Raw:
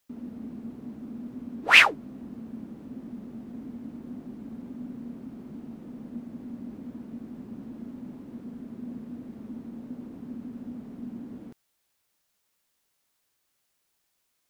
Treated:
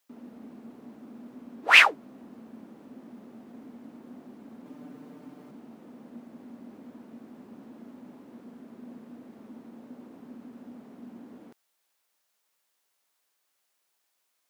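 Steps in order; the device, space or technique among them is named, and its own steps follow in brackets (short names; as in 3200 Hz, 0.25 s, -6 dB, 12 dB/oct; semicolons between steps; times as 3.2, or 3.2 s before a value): 4.65–5.51 comb 6.7 ms, depth 85%; filter by subtraction (in parallel: LPF 710 Hz 12 dB/oct + phase invert); on the sum: gain -1 dB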